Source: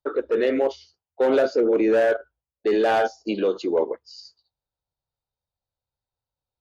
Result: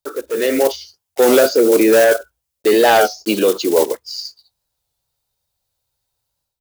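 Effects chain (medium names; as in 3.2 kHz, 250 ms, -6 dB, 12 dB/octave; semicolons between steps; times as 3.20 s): block-companded coder 5-bit; level rider gain up to 11 dB; treble shelf 3.3 kHz +12 dB; warped record 33 1/3 rpm, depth 100 cents; trim -1.5 dB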